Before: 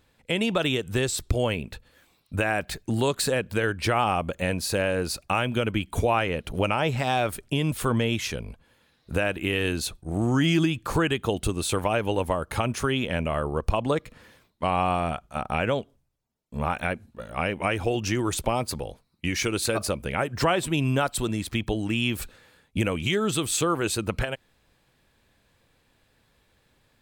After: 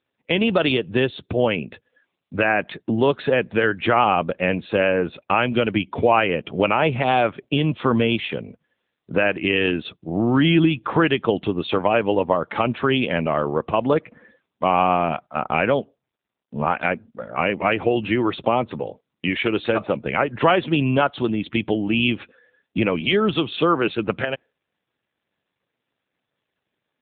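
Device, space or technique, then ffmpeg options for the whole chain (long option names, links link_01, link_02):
mobile call with aggressive noise cancelling: -filter_complex "[0:a]asettb=1/sr,asplit=3[link_01][link_02][link_03];[link_01]atrim=end=23.004[link_04];[link_02]atrim=start=23:end=23.88,asetpts=PTS-STARTPTS,afade=type=in:duration=0.004:curve=qsin,afade=type=out:start_time=0.876:duration=0.004:curve=qsin,highpass=frequency=100:width=0.5412,highpass=frequency=100:width=1.3066[link_05];[link_03]atrim=start=23.876[link_06];[link_04][link_05]acrossfade=duration=0.004:curve1=hsin:curve2=qsin[link_07];[link_07][link_06]acrossfade=duration=0.004:curve1=qsin:curve2=hsin,highpass=160,afftdn=noise_reduction=17:noise_floor=-49,volume=7dB" -ar 8000 -c:a libopencore_amrnb -b:a 7950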